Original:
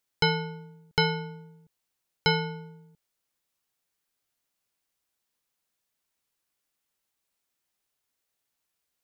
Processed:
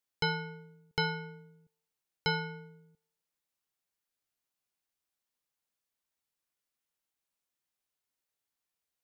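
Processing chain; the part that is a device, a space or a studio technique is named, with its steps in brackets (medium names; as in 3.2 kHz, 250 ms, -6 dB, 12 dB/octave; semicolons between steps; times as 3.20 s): filtered reverb send (on a send: high-pass 580 Hz 12 dB/octave + low-pass 3.4 kHz + reverberation RT60 0.70 s, pre-delay 3 ms, DRR 10 dB); on the sum: trim -7.5 dB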